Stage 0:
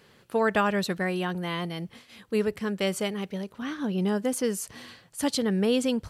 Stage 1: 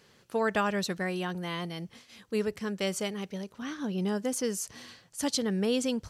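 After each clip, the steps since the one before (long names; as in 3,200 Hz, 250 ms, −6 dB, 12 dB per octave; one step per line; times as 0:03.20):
parametric band 6,000 Hz +7.5 dB 0.76 octaves
level −4 dB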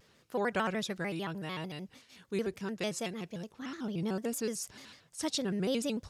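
pitch modulation by a square or saw wave square 6.7 Hz, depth 160 cents
level −4 dB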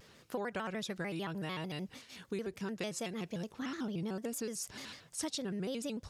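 downward compressor, threshold −41 dBFS, peak gain reduction 13.5 dB
level +5 dB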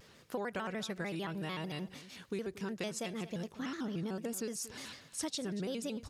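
single-tap delay 233 ms −15.5 dB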